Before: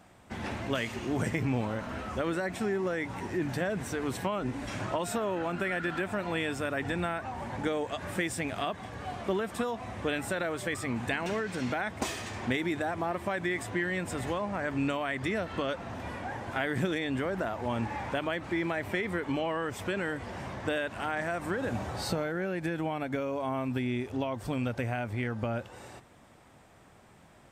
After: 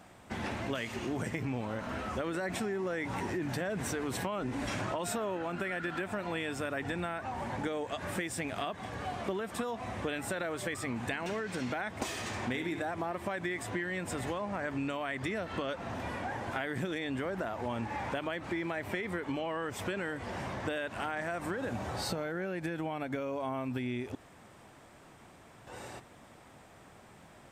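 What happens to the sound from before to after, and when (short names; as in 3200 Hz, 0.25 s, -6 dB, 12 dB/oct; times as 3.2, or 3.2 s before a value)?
2.34–5.37 fast leveller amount 50%
12.19–12.85 flutter echo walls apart 11.1 m, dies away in 0.43 s
24.15–25.67 room tone
whole clip: low shelf 130 Hz -3.5 dB; compressor 3:1, threshold -36 dBFS; gain +2.5 dB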